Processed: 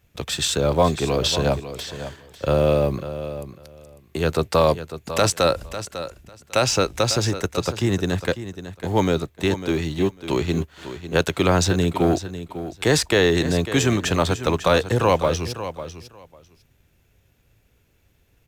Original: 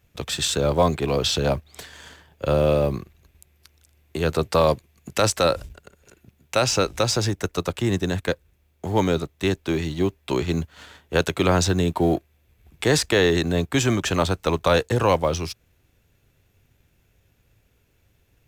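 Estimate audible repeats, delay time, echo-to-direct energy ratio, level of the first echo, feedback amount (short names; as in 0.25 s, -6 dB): 2, 0.549 s, -12.0 dB, -12.0 dB, 16%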